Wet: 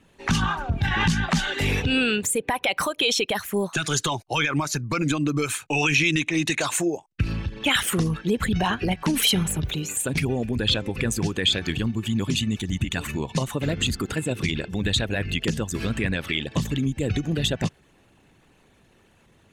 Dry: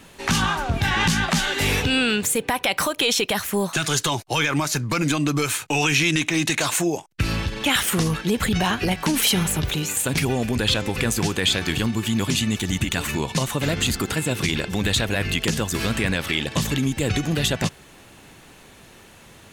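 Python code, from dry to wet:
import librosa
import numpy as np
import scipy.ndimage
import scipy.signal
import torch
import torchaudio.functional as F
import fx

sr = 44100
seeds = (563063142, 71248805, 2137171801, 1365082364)

y = fx.envelope_sharpen(x, sr, power=1.5)
y = fx.upward_expand(y, sr, threshold_db=-39.0, expansion=1.5)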